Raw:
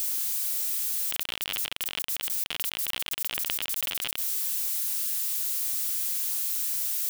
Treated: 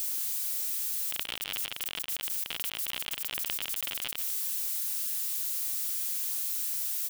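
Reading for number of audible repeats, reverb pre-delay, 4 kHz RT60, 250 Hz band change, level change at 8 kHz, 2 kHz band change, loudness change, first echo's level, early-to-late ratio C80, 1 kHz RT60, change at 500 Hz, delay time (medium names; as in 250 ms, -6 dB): 1, no reverb, no reverb, -3.5 dB, -3.5 dB, -3.5 dB, -3.5 dB, -13.5 dB, no reverb, no reverb, -3.5 dB, 147 ms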